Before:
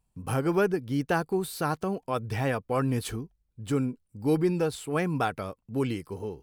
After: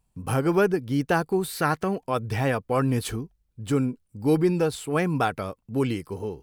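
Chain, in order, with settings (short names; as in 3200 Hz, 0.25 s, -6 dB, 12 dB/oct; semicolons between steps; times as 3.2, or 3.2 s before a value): 1.49–1.97 bell 1900 Hz +9.5 dB 0.66 oct; gain +3.5 dB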